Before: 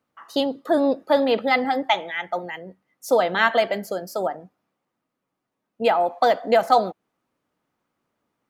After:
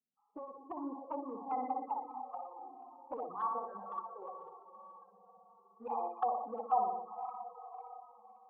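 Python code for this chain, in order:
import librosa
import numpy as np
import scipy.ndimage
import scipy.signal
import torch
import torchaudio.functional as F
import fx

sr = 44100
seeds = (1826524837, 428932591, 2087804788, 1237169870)

y = fx.wiener(x, sr, points=41)
y = fx.peak_eq(y, sr, hz=1100.0, db=-3.5, octaves=1.6)
y = fx.fixed_phaser(y, sr, hz=1600.0, stages=4)
y = fx.echo_diffused(y, sr, ms=529, feedback_pct=48, wet_db=-10.0)
y = fx.dynamic_eq(y, sr, hz=180.0, q=3.9, threshold_db=-49.0, ratio=4.0, max_db=-6)
y = fx.formant_cascade(y, sr, vowel='a')
y = fx.spec_topn(y, sr, count=16)
y = fx.room_flutter(y, sr, wall_m=10.3, rt60_s=0.96)
y = fx.env_flanger(y, sr, rest_ms=4.9, full_db=-40.5)
y = F.gain(torch.from_numpy(y), 10.5).numpy()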